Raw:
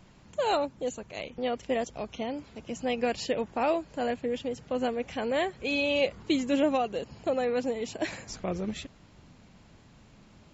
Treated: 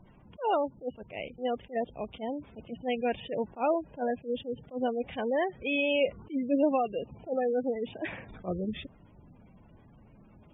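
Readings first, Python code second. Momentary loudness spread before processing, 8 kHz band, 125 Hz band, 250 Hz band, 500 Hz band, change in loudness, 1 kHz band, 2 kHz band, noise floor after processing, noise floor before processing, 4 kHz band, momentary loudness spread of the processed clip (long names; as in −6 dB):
10 LU, can't be measured, −1.5 dB, −1.5 dB, −1.0 dB, −1.5 dB, −1.0 dB, −2.0 dB, −57 dBFS, −56 dBFS, −5.0 dB, 12 LU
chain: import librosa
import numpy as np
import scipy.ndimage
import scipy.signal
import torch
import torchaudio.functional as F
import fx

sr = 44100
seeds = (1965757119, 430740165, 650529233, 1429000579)

y = fx.spec_gate(x, sr, threshold_db=-20, keep='strong')
y = fx.brickwall_lowpass(y, sr, high_hz=3700.0)
y = fx.attack_slew(y, sr, db_per_s=280.0)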